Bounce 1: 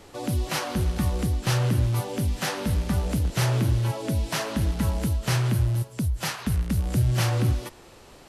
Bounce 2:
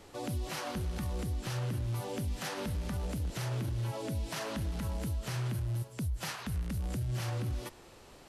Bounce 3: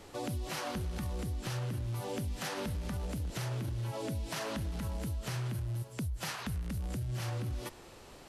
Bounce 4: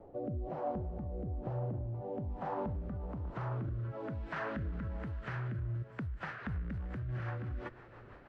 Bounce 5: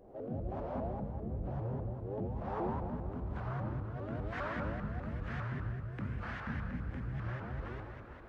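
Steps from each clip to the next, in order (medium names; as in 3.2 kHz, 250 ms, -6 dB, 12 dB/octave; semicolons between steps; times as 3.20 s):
peak limiter -22.5 dBFS, peak gain reduction 10 dB; trim -5.5 dB
compression, threshold -35 dBFS, peak gain reduction 5 dB; trim +2 dB
low-pass sweep 670 Hz -> 1.6 kHz, 1.68–4.48 s; delay 626 ms -21.5 dB; rotary cabinet horn 1.1 Hz, later 6 Hz, at 6.05 s; trim -1 dB
in parallel at -10 dB: saturation -39.5 dBFS, distortion -12 dB; on the sum: reverberation RT60 1.7 s, pre-delay 13 ms, DRR -4.5 dB; vibrato with a chosen wave saw up 5 Hz, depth 250 cents; trim -6.5 dB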